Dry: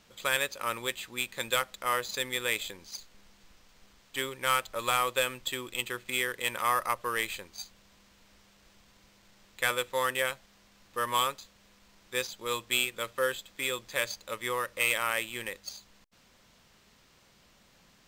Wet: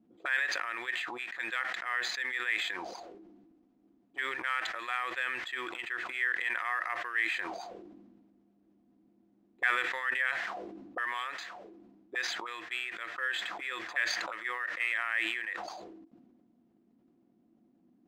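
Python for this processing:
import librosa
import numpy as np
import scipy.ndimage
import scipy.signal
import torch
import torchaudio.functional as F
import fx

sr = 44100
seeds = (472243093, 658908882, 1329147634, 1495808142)

y = fx.auto_wah(x, sr, base_hz=220.0, top_hz=1800.0, q=5.4, full_db=-33.5, direction='up')
y = fx.small_body(y, sr, hz=(330.0, 710.0), ring_ms=60, db=14)
y = fx.sustainer(y, sr, db_per_s=33.0)
y = y * 10.0 ** (4.0 / 20.0)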